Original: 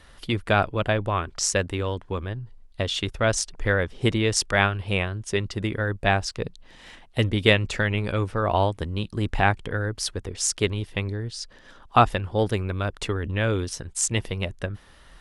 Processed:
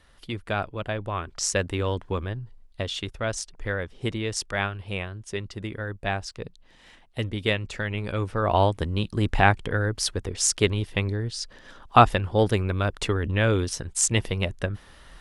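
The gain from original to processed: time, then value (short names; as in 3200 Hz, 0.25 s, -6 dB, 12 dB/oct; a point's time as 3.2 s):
0.87 s -7 dB
1.99 s +2 dB
3.29 s -6.5 dB
7.75 s -6.5 dB
8.68 s +2 dB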